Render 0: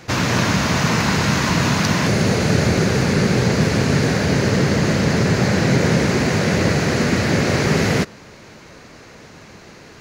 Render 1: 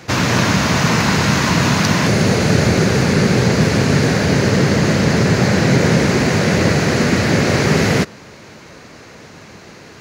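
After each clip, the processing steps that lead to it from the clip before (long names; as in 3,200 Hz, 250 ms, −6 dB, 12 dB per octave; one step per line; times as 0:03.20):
high-pass filter 59 Hz
level +3 dB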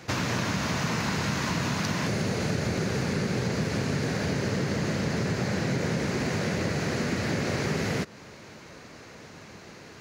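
downward compressor 3 to 1, threshold −19 dBFS, peak gain reduction 8 dB
level −7.5 dB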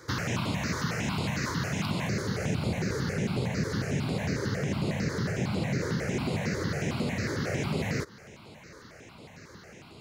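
step-sequenced phaser 11 Hz 730–6,000 Hz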